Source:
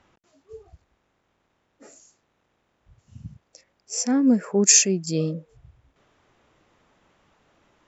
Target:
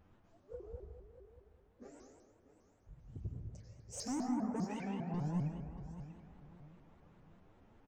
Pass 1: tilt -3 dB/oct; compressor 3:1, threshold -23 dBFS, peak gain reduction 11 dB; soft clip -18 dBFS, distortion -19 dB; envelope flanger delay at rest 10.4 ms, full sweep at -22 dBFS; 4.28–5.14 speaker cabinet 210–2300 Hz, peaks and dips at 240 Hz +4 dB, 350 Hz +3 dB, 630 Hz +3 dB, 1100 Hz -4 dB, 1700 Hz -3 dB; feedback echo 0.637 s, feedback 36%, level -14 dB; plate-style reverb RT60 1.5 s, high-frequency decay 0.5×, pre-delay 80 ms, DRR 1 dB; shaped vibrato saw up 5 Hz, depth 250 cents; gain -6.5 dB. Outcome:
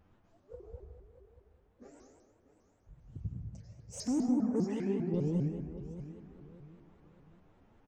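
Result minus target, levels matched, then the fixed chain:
soft clip: distortion -9 dB
tilt -3 dB/oct; compressor 3:1, threshold -23 dBFS, peak gain reduction 11 dB; soft clip -25 dBFS, distortion -10 dB; envelope flanger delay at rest 10.4 ms, full sweep at -22 dBFS; 4.28–5.14 speaker cabinet 210–2300 Hz, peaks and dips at 240 Hz +4 dB, 350 Hz +3 dB, 630 Hz +3 dB, 1100 Hz -4 dB, 1700 Hz -3 dB; feedback echo 0.637 s, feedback 36%, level -14 dB; plate-style reverb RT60 1.5 s, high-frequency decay 0.5×, pre-delay 80 ms, DRR 1 dB; shaped vibrato saw up 5 Hz, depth 250 cents; gain -6.5 dB

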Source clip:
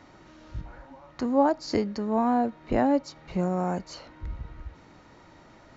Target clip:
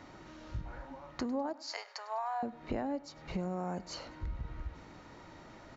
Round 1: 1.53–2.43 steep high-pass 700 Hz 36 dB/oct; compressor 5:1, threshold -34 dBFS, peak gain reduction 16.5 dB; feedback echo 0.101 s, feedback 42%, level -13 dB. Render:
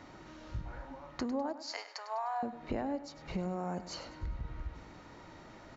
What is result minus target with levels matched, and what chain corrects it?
echo-to-direct +6.5 dB
1.53–2.43 steep high-pass 700 Hz 36 dB/oct; compressor 5:1, threshold -34 dBFS, peak gain reduction 16.5 dB; feedback echo 0.101 s, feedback 42%, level -19.5 dB

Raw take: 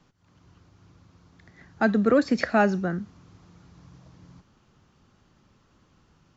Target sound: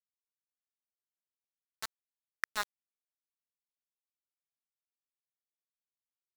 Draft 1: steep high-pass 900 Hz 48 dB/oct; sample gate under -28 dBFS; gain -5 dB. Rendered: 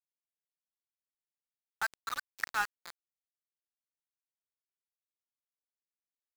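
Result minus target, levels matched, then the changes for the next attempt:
sample gate: distortion -10 dB
change: sample gate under -19 dBFS

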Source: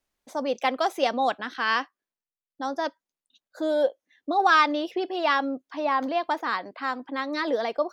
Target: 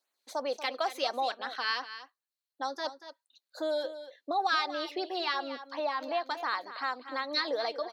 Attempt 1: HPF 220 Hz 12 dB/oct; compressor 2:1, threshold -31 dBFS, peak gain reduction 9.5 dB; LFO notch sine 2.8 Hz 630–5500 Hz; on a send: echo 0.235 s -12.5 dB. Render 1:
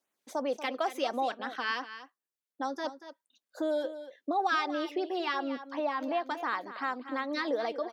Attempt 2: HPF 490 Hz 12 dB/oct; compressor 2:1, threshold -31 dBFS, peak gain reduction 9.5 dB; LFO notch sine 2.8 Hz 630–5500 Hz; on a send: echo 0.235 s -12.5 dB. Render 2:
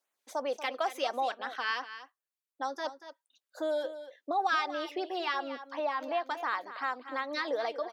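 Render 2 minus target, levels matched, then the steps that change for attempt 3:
4000 Hz band -4.5 dB
add after compressor: bell 4200 Hz +13 dB 0.25 oct

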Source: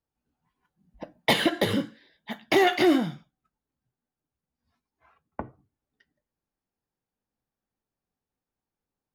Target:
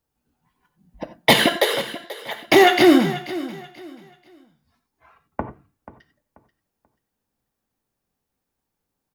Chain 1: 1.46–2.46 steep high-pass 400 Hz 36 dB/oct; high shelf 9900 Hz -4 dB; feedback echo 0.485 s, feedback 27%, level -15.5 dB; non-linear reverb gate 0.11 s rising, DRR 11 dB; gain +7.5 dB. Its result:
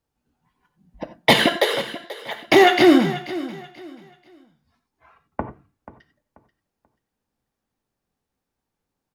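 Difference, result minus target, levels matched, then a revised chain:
8000 Hz band -3.5 dB
1.46–2.46 steep high-pass 400 Hz 36 dB/oct; high shelf 9900 Hz +5.5 dB; feedback echo 0.485 s, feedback 27%, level -15.5 dB; non-linear reverb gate 0.11 s rising, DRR 11 dB; gain +7.5 dB

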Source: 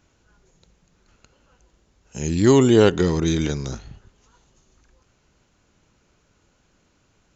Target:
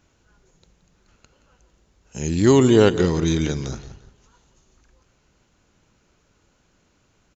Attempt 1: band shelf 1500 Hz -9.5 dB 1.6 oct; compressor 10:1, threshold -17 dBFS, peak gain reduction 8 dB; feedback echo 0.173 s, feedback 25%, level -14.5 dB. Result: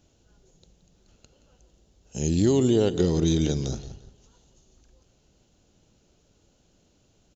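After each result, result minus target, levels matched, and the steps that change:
compressor: peak gain reduction +8 dB; 2000 Hz band -8.0 dB
remove: compressor 10:1, threshold -17 dBFS, peak gain reduction 8 dB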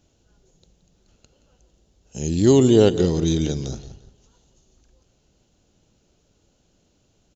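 2000 Hz band -8.5 dB
remove: band shelf 1500 Hz -9.5 dB 1.6 oct

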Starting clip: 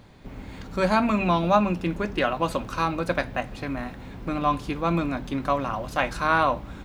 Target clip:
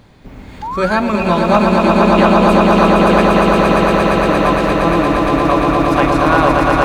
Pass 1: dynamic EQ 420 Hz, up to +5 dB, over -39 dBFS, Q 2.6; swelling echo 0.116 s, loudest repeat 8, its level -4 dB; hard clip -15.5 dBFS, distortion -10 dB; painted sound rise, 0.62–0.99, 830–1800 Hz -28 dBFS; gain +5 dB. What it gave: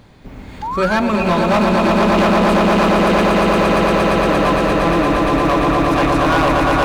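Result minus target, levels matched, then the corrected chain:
hard clip: distortion +22 dB
dynamic EQ 420 Hz, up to +5 dB, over -39 dBFS, Q 2.6; swelling echo 0.116 s, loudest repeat 8, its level -4 dB; hard clip -6.5 dBFS, distortion -32 dB; painted sound rise, 0.62–0.99, 830–1800 Hz -28 dBFS; gain +5 dB

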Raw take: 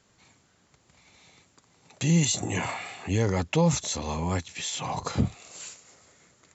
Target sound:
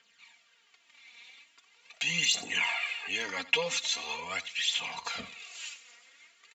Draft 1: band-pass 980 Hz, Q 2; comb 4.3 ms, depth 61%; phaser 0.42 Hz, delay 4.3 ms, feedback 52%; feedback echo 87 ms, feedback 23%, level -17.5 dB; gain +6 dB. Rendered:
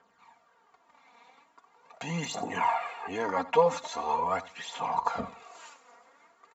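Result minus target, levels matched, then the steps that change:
1000 Hz band +13.0 dB
change: band-pass 2700 Hz, Q 2

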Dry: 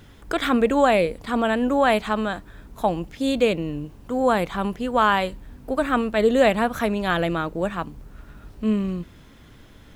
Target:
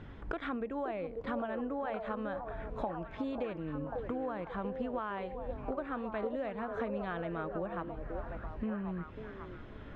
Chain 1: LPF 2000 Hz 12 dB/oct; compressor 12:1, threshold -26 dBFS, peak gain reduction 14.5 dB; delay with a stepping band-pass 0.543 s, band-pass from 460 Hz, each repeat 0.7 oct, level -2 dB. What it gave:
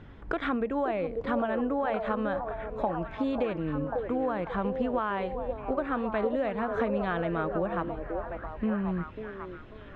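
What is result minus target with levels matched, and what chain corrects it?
compressor: peak gain reduction -8 dB
LPF 2000 Hz 12 dB/oct; compressor 12:1, threshold -34.5 dBFS, peak gain reduction 22.5 dB; delay with a stepping band-pass 0.543 s, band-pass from 460 Hz, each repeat 0.7 oct, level -2 dB

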